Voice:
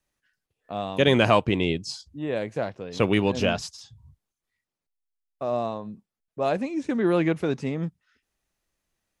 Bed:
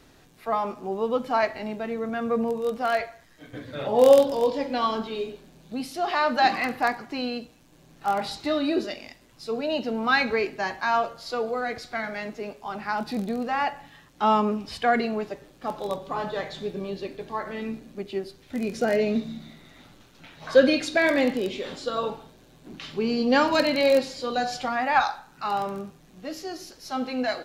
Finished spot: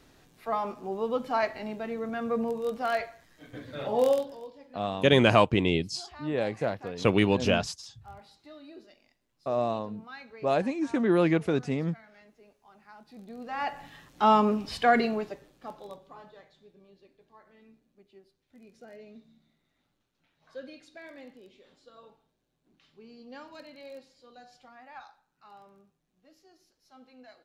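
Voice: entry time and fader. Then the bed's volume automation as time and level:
4.05 s, −1.0 dB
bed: 0:03.94 −4 dB
0:04.54 −23.5 dB
0:13.04 −23.5 dB
0:13.83 0 dB
0:15.04 0 dB
0:16.56 −25.5 dB

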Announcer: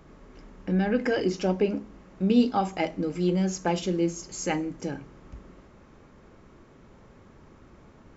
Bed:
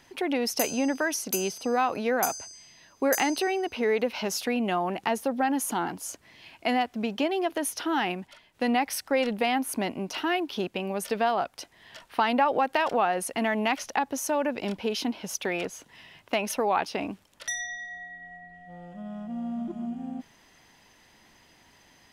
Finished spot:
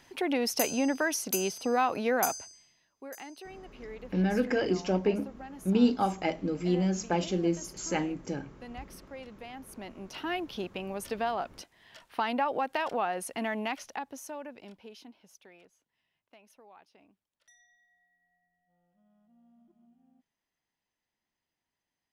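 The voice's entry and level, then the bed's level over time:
3.45 s, −2.5 dB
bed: 0:02.34 −1.5 dB
0:02.92 −19.5 dB
0:09.49 −19.5 dB
0:10.33 −6 dB
0:13.55 −6 dB
0:15.92 −30.5 dB

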